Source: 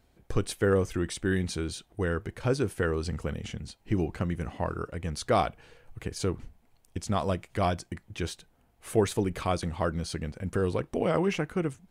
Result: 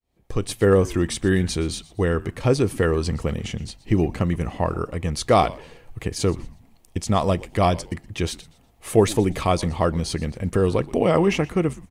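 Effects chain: opening faded in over 0.68 s; notch 1500 Hz, Q 6.5; frequency-shifting echo 0.121 s, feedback 32%, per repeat -120 Hz, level -20 dB; gain +8 dB

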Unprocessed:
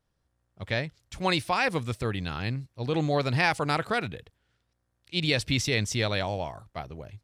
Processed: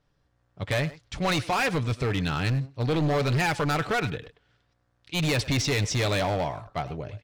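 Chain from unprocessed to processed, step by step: LPF 5500 Hz 12 dB/oct; comb 6.9 ms, depth 32%; in parallel at 0 dB: limiter -19 dBFS, peak gain reduction 10.5 dB; on the sum: overloaded stage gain 21.5 dB; speakerphone echo 0.1 s, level -11 dB

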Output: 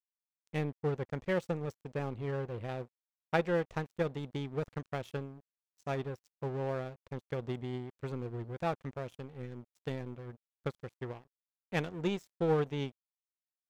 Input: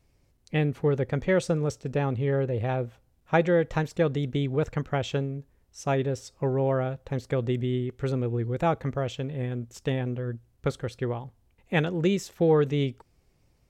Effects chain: power-law curve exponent 1.4; crossover distortion -50.5 dBFS; gain -4.5 dB

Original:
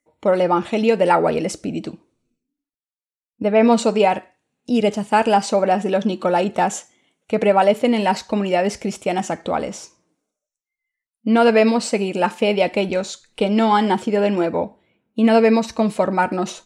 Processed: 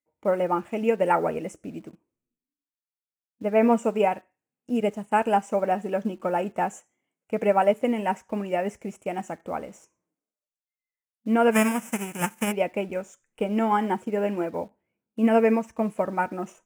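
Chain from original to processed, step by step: 11.51–12.51 spectral whitening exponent 0.3; Butterworth band-stop 4200 Hz, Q 1.1; in parallel at -10 dB: bit-crush 6-bit; on the sum: upward expander 1.5:1, over -26 dBFS; gain -7 dB

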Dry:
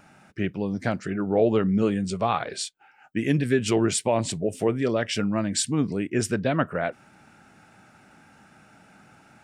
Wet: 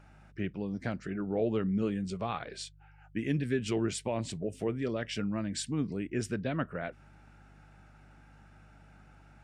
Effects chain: dynamic EQ 800 Hz, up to -5 dB, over -34 dBFS, Q 0.8; buzz 50 Hz, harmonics 3, -51 dBFS -4 dB/oct; high shelf 6900 Hz -10 dB; gain -7 dB

